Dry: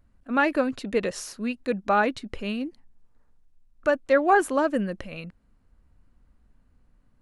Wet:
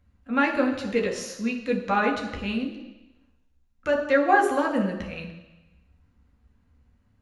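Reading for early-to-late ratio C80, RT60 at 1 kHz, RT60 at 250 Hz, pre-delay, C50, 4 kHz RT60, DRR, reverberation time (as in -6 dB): 10.0 dB, 1.1 s, 1.0 s, 3 ms, 7.5 dB, 1.1 s, 1.5 dB, 1.0 s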